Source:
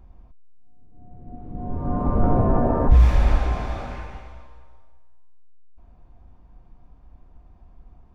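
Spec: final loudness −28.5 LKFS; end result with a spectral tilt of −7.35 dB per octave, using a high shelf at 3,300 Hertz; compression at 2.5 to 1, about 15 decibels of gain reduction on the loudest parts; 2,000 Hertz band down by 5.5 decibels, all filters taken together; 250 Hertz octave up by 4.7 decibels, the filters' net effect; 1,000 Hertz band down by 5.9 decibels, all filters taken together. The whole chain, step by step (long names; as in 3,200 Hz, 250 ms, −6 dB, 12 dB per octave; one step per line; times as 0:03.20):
parametric band 250 Hz +6 dB
parametric band 1,000 Hz −8.5 dB
parametric band 2,000 Hz −7 dB
high-shelf EQ 3,300 Hz +8.5 dB
downward compressor 2.5 to 1, threshold −33 dBFS
level +6 dB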